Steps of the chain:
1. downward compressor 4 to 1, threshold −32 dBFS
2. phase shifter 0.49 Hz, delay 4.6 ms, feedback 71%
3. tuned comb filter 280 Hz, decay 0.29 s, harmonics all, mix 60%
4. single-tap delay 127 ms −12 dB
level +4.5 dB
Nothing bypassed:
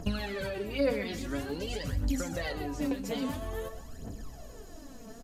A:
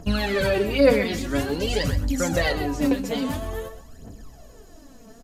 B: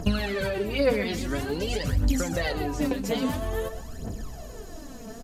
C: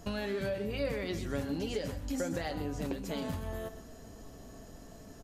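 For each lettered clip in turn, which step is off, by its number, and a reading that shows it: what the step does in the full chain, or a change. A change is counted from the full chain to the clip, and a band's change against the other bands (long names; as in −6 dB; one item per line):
1, average gain reduction 6.5 dB
3, change in momentary loudness spread −1 LU
2, change in momentary loudness spread −2 LU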